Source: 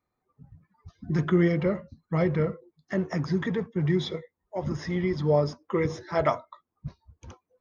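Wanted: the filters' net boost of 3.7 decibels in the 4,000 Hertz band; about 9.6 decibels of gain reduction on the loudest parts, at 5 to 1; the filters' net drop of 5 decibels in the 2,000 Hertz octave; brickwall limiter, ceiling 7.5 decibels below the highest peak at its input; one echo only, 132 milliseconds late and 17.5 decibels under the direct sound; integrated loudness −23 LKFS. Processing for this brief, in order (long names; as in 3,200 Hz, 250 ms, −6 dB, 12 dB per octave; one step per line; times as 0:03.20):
parametric band 2,000 Hz −7 dB
parametric band 4,000 Hz +6.5 dB
downward compressor 5 to 1, threshold −28 dBFS
brickwall limiter −26 dBFS
single-tap delay 132 ms −17.5 dB
level +14 dB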